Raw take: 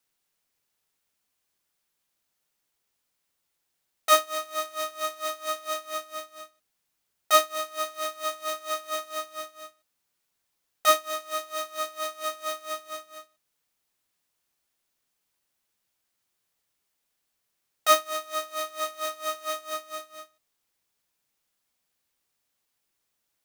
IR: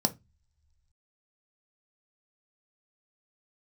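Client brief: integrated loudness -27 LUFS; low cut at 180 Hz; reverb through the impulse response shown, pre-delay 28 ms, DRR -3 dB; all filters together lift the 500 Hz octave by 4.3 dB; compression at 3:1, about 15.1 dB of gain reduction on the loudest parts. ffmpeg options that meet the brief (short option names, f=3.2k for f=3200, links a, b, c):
-filter_complex "[0:a]highpass=180,equalizer=f=500:t=o:g=6,acompressor=threshold=-33dB:ratio=3,asplit=2[a][b];[1:a]atrim=start_sample=2205,adelay=28[c];[b][c]afir=irnorm=-1:irlink=0,volume=-4.5dB[d];[a][d]amix=inputs=2:normalize=0,volume=7dB"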